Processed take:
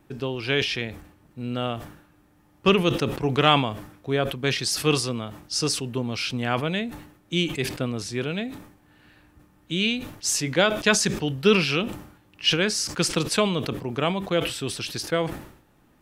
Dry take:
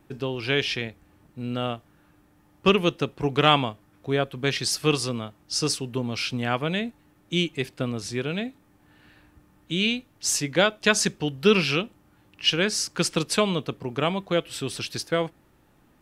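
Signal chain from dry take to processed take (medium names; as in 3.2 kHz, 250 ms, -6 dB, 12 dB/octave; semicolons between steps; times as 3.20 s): decay stretcher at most 87 dB/s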